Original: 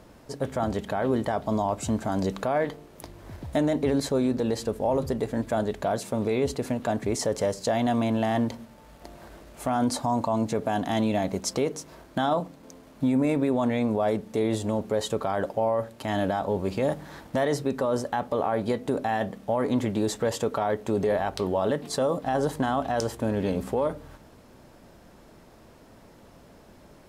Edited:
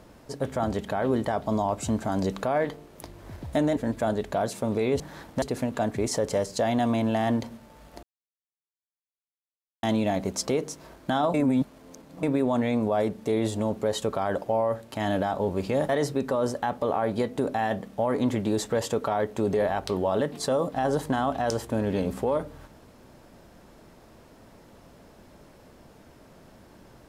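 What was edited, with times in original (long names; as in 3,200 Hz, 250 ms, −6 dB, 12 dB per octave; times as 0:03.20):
0:03.77–0:05.27: remove
0:09.11–0:10.91: silence
0:12.42–0:13.31: reverse
0:16.97–0:17.39: move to 0:06.50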